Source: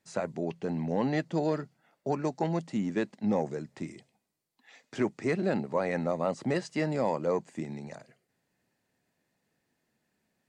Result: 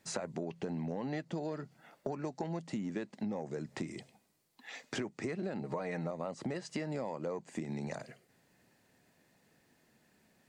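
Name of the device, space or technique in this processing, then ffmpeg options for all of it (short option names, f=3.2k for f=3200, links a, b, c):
serial compression, peaks first: -filter_complex "[0:a]asettb=1/sr,asplit=3[a][b][c];[a]atrim=end=5.614[d];[b]atrim=start=5.61:end=6.11,asetpts=PTS-STARTPTS,afade=t=in:d=0.004:c=qsin,afade=t=out:st=0.496:d=0.004:c=qsin,aecho=1:1:6.5:0.66,atrim=end_sample=22050[e];[c]atrim=start=6.106[f];[d][e]acrossfade=d=0.004:c1=hsin:c2=qsin[g];[g][f]acrossfade=d=0.004:c1=qsin:c2=hsin,acompressor=threshold=-38dB:ratio=6,acompressor=threshold=-47dB:ratio=2,volume=8.5dB"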